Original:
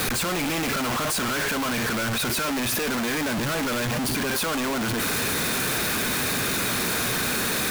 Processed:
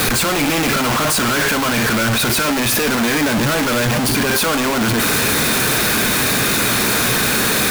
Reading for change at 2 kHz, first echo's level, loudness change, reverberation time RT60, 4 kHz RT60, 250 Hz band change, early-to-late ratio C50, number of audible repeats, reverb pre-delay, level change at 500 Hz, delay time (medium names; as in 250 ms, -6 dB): +9.0 dB, no echo, +9.0 dB, 0.55 s, 0.50 s, +9.0 dB, 16.5 dB, no echo, 5 ms, +9.0 dB, no echo